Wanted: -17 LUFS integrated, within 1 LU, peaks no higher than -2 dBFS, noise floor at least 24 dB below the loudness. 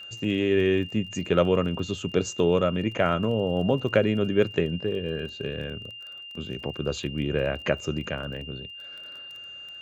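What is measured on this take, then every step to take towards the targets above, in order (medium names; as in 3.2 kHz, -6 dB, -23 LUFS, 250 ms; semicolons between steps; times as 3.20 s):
tick rate 24 per s; steady tone 2.8 kHz; tone level -39 dBFS; loudness -26.5 LUFS; peak level -6.5 dBFS; loudness target -17.0 LUFS
-> de-click; band-stop 2.8 kHz, Q 30; trim +9.5 dB; peak limiter -2 dBFS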